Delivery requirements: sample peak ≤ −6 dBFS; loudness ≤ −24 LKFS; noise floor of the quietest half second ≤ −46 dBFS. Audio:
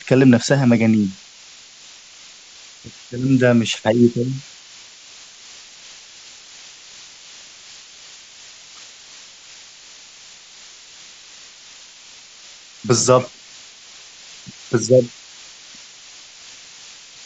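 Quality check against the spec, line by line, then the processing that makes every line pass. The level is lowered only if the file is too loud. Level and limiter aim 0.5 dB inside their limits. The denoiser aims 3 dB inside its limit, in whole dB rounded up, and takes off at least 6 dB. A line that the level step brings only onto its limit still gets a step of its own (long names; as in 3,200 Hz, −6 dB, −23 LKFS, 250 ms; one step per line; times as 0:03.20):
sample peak −2.0 dBFS: out of spec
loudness −17.0 LKFS: out of spec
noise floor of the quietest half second −44 dBFS: out of spec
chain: level −7.5 dB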